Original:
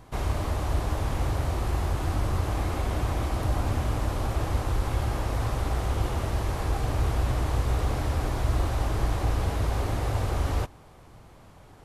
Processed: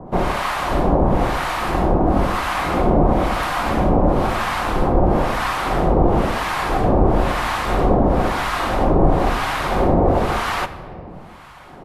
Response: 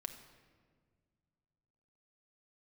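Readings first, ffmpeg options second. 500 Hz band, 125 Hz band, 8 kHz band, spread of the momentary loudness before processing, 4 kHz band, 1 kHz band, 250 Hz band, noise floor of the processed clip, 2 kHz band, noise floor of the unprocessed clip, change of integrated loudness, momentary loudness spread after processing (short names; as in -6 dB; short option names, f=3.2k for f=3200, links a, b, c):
+15.0 dB, +4.0 dB, +5.0 dB, 2 LU, +10.5 dB, +14.5 dB, +15.0 dB, -39 dBFS, +14.0 dB, -51 dBFS, +9.5 dB, 5 LU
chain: -filter_complex "[0:a]firequalizer=gain_entry='entry(120,0);entry(180,12);entry(300,10);entry(780,12);entry(6300,0)':delay=0.05:min_phase=1,afreqshift=-18,acrossover=split=900[a][b];[a]aeval=exprs='val(0)*(1-1/2+1/2*cos(2*PI*1*n/s))':c=same[c];[b]aeval=exprs='val(0)*(1-1/2-1/2*cos(2*PI*1*n/s))':c=same[d];[c][d]amix=inputs=2:normalize=0,asplit=2[e][f];[1:a]atrim=start_sample=2205[g];[f][g]afir=irnorm=-1:irlink=0,volume=6.5dB[h];[e][h]amix=inputs=2:normalize=0,volume=1dB"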